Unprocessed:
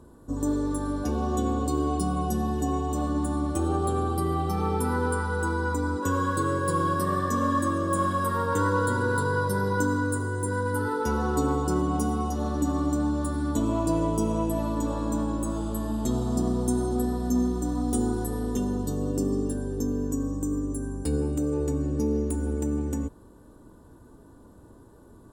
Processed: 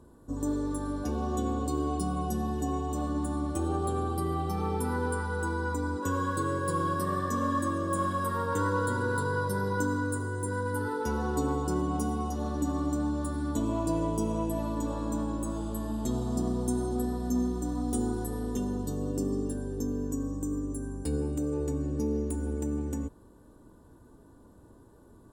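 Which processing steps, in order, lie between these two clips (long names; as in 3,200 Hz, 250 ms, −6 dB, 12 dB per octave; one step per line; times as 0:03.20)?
notch filter 1,300 Hz, Q 25
level −4 dB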